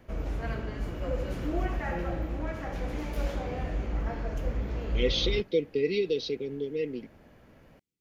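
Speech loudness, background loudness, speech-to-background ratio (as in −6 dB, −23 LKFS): −30.0 LKFS, −34.0 LKFS, 4.0 dB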